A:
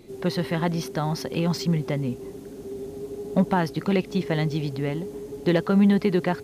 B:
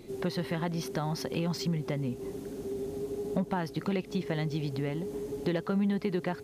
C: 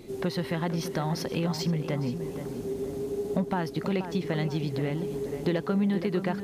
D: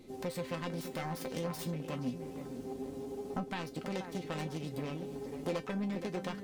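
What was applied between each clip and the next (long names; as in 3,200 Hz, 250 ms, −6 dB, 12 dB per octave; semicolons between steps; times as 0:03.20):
downward compressor 2.5 to 1, threshold −31 dBFS, peak gain reduction 11 dB
tape delay 477 ms, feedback 48%, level −8 dB, low-pass 2,300 Hz; level +2.5 dB
phase distortion by the signal itself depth 0.6 ms; tuned comb filter 260 Hz, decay 0.16 s, harmonics all, mix 80%; level +1 dB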